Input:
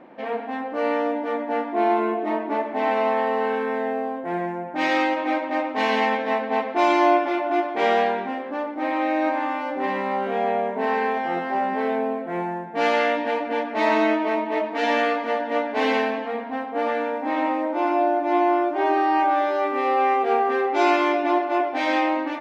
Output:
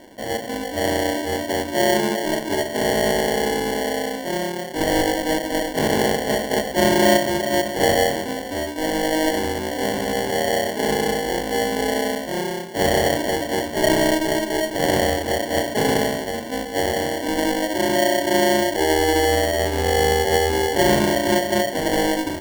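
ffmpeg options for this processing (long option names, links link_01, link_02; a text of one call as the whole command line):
ffmpeg -i in.wav -af "acrusher=samples=35:mix=1:aa=0.000001,volume=2dB" out.wav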